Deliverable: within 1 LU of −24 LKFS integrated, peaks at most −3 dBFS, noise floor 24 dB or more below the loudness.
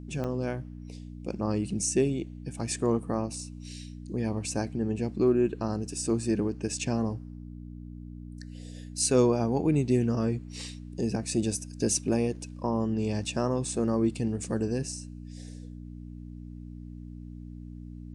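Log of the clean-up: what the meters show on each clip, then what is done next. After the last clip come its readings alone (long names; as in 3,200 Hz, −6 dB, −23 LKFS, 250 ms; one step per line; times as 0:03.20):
number of dropouts 1; longest dropout 6.2 ms; mains hum 60 Hz; hum harmonics up to 300 Hz; level of the hum −40 dBFS; integrated loudness −29.0 LKFS; sample peak −11.0 dBFS; target loudness −24.0 LKFS
→ repair the gap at 0:00.24, 6.2 ms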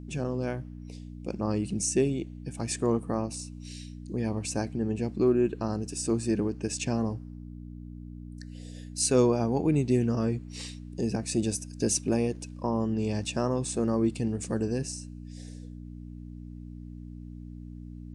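number of dropouts 0; mains hum 60 Hz; hum harmonics up to 300 Hz; level of the hum −40 dBFS
→ hum removal 60 Hz, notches 5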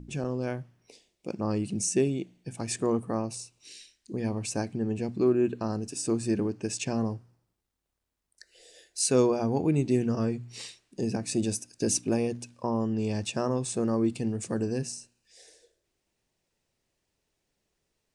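mains hum none found; integrated loudness −29.5 LKFS; sample peak −12.0 dBFS; target loudness −24.0 LKFS
→ level +5.5 dB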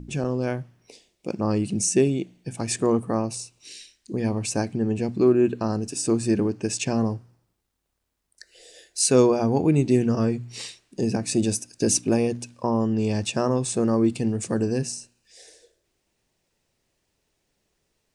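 integrated loudness −24.0 LKFS; sample peak −6.5 dBFS; background noise floor −75 dBFS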